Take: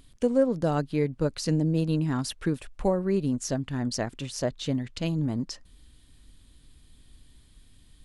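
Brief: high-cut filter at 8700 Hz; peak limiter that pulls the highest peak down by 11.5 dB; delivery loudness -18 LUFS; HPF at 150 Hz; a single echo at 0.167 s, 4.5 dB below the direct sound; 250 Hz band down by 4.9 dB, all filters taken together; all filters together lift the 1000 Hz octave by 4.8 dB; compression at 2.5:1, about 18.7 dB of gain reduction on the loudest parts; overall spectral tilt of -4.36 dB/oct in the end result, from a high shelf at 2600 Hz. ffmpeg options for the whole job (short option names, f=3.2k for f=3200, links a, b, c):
-af "highpass=150,lowpass=8.7k,equalizer=f=250:t=o:g=-6,equalizer=f=1k:t=o:g=6,highshelf=f=2.6k:g=7.5,acompressor=threshold=-48dB:ratio=2.5,alimiter=level_in=11.5dB:limit=-24dB:level=0:latency=1,volume=-11.5dB,aecho=1:1:167:0.596,volume=26.5dB"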